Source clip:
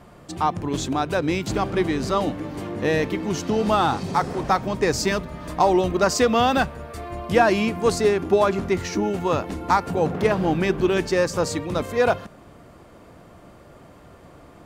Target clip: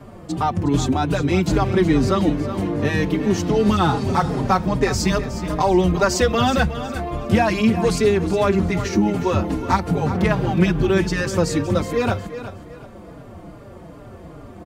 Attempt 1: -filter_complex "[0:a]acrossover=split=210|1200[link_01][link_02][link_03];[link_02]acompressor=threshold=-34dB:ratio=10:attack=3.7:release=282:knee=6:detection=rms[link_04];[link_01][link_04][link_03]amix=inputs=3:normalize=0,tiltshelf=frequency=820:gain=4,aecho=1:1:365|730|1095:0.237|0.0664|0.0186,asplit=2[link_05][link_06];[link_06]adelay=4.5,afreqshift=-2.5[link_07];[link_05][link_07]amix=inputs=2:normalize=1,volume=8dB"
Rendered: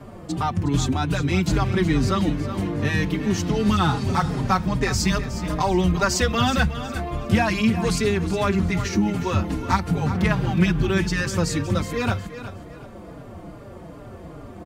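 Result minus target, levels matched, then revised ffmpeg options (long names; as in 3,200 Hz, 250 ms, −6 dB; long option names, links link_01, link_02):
downward compressor: peak gain reduction +9 dB
-filter_complex "[0:a]acrossover=split=210|1200[link_01][link_02][link_03];[link_02]acompressor=threshold=-24dB:ratio=10:attack=3.7:release=282:knee=6:detection=rms[link_04];[link_01][link_04][link_03]amix=inputs=3:normalize=0,tiltshelf=frequency=820:gain=4,aecho=1:1:365|730|1095:0.237|0.0664|0.0186,asplit=2[link_05][link_06];[link_06]adelay=4.5,afreqshift=-2.5[link_07];[link_05][link_07]amix=inputs=2:normalize=1,volume=8dB"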